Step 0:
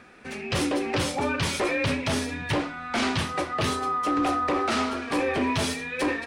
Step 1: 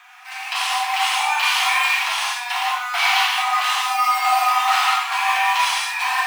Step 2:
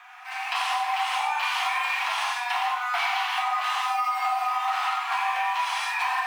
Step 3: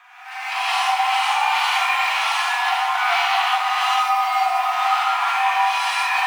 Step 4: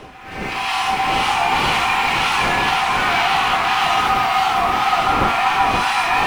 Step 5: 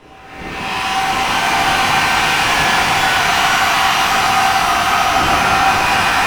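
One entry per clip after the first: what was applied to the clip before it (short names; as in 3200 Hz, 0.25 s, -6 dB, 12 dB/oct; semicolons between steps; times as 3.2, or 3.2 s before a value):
in parallel at -5 dB: decimation with a swept rate 9×, swing 100% 0.54 Hz; on the sum: rippled Chebyshev high-pass 720 Hz, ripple 6 dB; non-linear reverb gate 0.22 s flat, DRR -6 dB; gain +4 dB
high shelf 2600 Hz -11.5 dB; compressor 10:1, threshold -25 dBFS, peak gain reduction 10.5 dB; gain +2.5 dB
on a send: echo with dull and thin repeats by turns 0.223 s, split 1400 Hz, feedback 58%, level -6 dB; on the sum: non-linear reverb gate 0.2 s rising, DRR -7 dB; gain -1.5 dB
wind noise 520 Hz -32 dBFS; reverse echo 0.841 s -23 dB; warbling echo 0.521 s, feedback 66%, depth 165 cents, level -4 dB
shimmer reverb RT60 3.2 s, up +12 st, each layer -8 dB, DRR -10.5 dB; gain -8 dB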